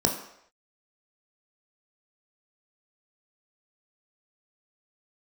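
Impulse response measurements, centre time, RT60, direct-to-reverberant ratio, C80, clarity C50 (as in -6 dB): 25 ms, no single decay rate, 1.5 dB, 10.5 dB, 8.0 dB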